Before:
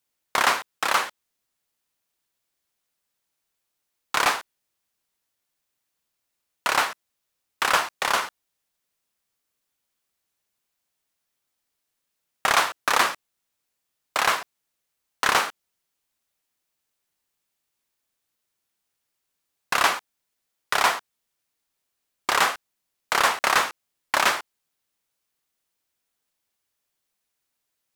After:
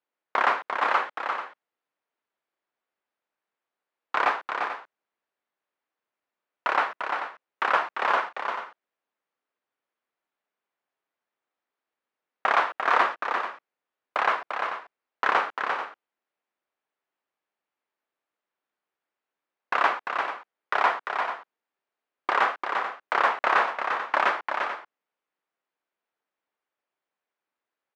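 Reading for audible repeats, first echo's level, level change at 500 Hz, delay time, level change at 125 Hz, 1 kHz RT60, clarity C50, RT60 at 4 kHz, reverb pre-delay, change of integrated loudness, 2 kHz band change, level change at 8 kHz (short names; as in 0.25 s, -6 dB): 2, -6.0 dB, +0.5 dB, 0.346 s, under -10 dB, none, none, none, none, -3.0 dB, -2.0 dB, under -20 dB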